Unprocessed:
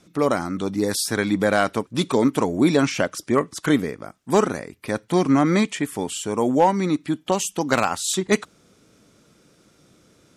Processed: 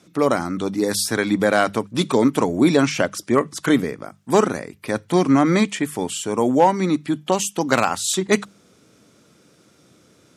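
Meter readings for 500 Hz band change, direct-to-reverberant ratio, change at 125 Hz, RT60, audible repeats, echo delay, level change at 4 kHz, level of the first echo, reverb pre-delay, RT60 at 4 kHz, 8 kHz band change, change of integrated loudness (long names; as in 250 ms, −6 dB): +2.0 dB, no reverb audible, +1.0 dB, no reverb audible, no echo audible, no echo audible, +2.0 dB, no echo audible, no reverb audible, no reverb audible, +2.0 dB, +2.0 dB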